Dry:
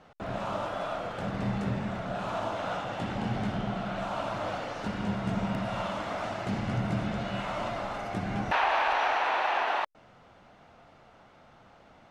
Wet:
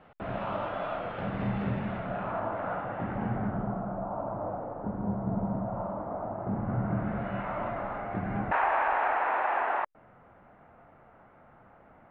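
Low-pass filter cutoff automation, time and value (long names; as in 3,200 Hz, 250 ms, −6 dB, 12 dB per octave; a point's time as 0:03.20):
low-pass filter 24 dB per octave
0:01.92 3,000 Hz
0:02.43 1,900 Hz
0:03.25 1,900 Hz
0:04.00 1,000 Hz
0:06.31 1,000 Hz
0:07.27 2,000 Hz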